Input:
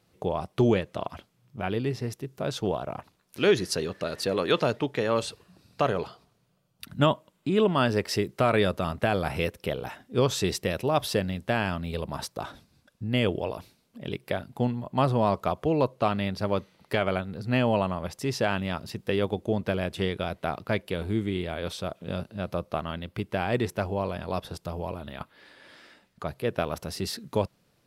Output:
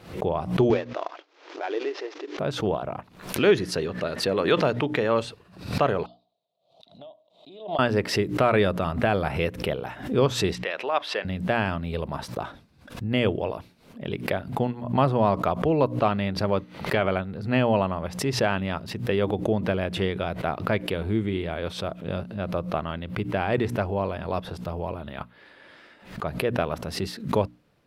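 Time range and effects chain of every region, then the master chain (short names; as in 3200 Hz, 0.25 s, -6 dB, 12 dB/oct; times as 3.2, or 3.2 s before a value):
0.7–2.39 CVSD 32 kbps + brick-wall FIR high-pass 290 Hz
6.06–7.79 double band-pass 1600 Hz, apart 2.5 oct + compressor 16:1, threshold -43 dBFS
10.55–11.25 BPF 360–2300 Hz + tilt +4.5 dB/oct
whole clip: tone controls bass 0 dB, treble -10 dB; notches 60/120/180/240/300 Hz; backwards sustainer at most 110 dB/s; gain +2.5 dB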